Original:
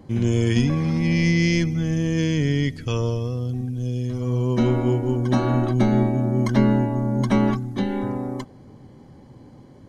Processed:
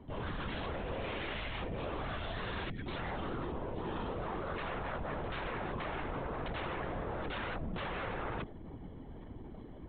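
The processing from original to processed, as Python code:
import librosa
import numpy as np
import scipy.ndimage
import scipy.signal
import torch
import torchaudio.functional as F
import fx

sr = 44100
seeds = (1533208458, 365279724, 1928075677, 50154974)

y = fx.rider(x, sr, range_db=10, speed_s=0.5)
y = 10.0 ** (-26.0 / 20.0) * (np.abs((y / 10.0 ** (-26.0 / 20.0) + 3.0) % 4.0 - 2.0) - 1.0)
y = fx.lpc_vocoder(y, sr, seeds[0], excitation='whisper', order=16)
y = y * 10.0 ** (-7.5 / 20.0)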